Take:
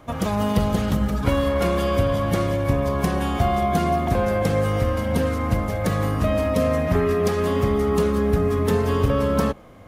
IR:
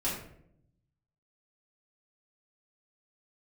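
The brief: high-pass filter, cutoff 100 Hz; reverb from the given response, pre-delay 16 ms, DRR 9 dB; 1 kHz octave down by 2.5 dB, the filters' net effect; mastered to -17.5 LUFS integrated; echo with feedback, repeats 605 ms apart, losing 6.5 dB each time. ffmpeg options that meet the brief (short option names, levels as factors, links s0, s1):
-filter_complex "[0:a]highpass=100,equalizer=f=1000:t=o:g=-3.5,aecho=1:1:605|1210|1815|2420|3025|3630:0.473|0.222|0.105|0.0491|0.0231|0.0109,asplit=2[s0][s1];[1:a]atrim=start_sample=2205,adelay=16[s2];[s1][s2]afir=irnorm=-1:irlink=0,volume=0.178[s3];[s0][s3]amix=inputs=2:normalize=0,volume=1.58"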